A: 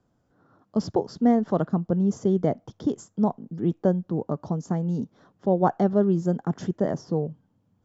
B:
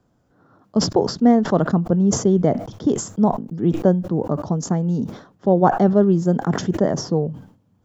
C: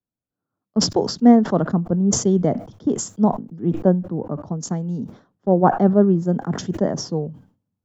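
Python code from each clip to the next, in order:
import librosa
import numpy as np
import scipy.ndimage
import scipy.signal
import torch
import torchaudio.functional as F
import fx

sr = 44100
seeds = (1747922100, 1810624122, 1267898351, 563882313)

y1 = fx.sustainer(x, sr, db_per_s=110.0)
y1 = y1 * librosa.db_to_amplitude(5.5)
y2 = fx.peak_eq(y1, sr, hz=230.0, db=2.5, octaves=0.77)
y2 = fx.band_widen(y2, sr, depth_pct=70)
y2 = y2 * librosa.db_to_amplitude(-2.5)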